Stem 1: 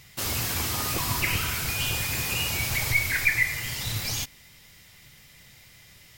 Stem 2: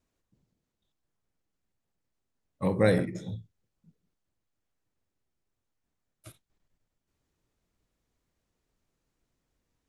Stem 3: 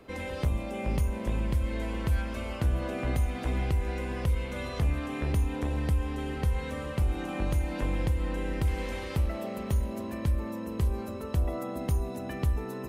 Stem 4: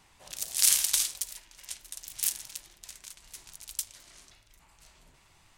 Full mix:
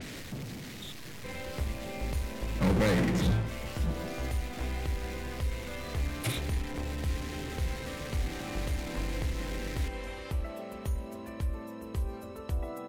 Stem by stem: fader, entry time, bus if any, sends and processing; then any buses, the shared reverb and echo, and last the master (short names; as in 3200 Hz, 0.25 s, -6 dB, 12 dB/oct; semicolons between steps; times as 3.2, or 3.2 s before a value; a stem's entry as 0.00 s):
-18.0 dB, 0.00 s, no send, negative-ratio compressor -38 dBFS, ratio -1
-6.0 dB, 0.00 s, no send, graphic EQ 125/250/500/1000/2000/4000 Hz +8/+7/+4/-6/+12/+7 dB; compressor 2:1, threshold -33 dBFS, peak gain reduction 12 dB; power-law curve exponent 0.35
-4.0 dB, 1.15 s, no send, bell 160 Hz -5 dB 1.6 oct
off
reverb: off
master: low-pass opened by the level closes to 350 Hz, open at -42 dBFS